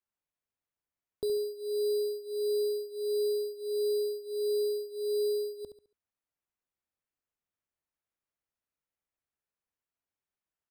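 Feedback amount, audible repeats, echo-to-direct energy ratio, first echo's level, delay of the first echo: 33%, 3, -8.5 dB, -9.0 dB, 70 ms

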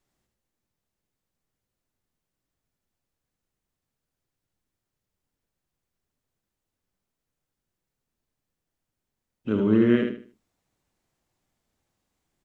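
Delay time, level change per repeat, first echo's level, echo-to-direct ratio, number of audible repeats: 76 ms, -10.5 dB, -5.0 dB, -4.5 dB, 3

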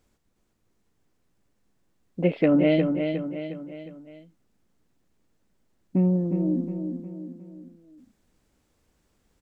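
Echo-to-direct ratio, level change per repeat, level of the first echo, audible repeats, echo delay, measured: -5.5 dB, -6.5 dB, -6.5 dB, 4, 0.359 s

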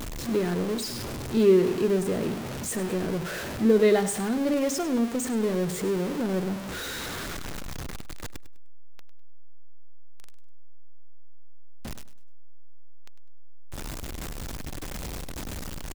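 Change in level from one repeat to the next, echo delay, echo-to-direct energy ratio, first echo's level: -11.0 dB, 0.101 s, -13.5 dB, -14.0 dB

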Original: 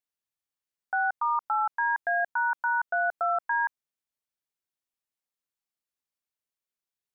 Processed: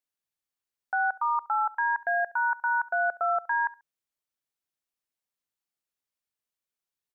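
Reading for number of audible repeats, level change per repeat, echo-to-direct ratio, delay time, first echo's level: 2, -12.5 dB, -21.0 dB, 69 ms, -21.0 dB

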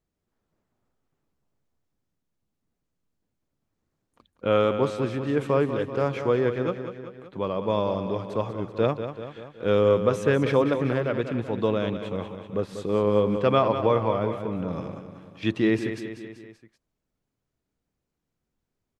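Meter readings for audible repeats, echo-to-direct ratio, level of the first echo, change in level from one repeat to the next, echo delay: 4, -8.0 dB, -9.5 dB, -4.5 dB, 0.192 s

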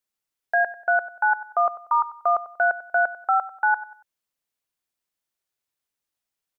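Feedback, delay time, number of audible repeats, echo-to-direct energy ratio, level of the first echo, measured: 34%, 94 ms, 3, -15.5 dB, -16.0 dB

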